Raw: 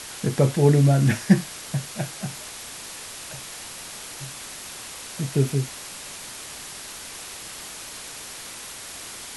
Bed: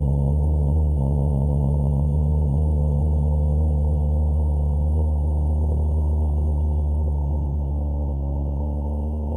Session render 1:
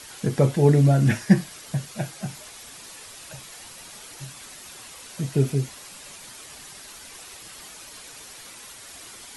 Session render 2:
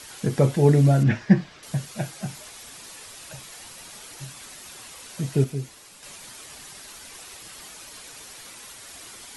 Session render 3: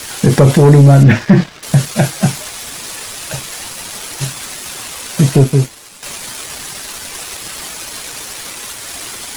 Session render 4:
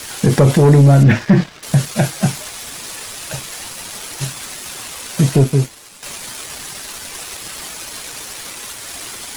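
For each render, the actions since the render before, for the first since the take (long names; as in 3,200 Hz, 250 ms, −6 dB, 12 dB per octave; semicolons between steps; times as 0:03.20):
broadband denoise 8 dB, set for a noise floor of −39 dBFS
0:01.03–0:01.63: high-frequency loss of the air 170 metres; 0:05.44–0:06.03: tuned comb filter 110 Hz, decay 1.6 s, mix 50%
leveller curve on the samples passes 2; boost into a limiter +11.5 dB
level −3 dB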